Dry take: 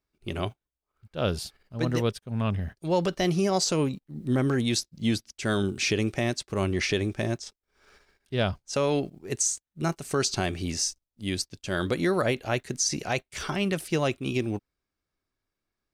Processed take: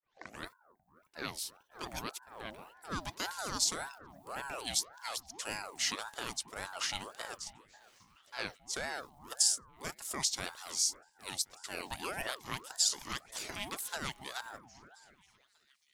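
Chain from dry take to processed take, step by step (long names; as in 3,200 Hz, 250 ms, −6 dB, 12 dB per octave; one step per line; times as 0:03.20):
turntable start at the beginning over 0.47 s
RIAA equalisation recording
echo through a band-pass that steps 270 ms, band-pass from 240 Hz, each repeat 0.7 octaves, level −11.5 dB
ring modulator whose carrier an LFO sweeps 840 Hz, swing 50%, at 1.8 Hz
level −9 dB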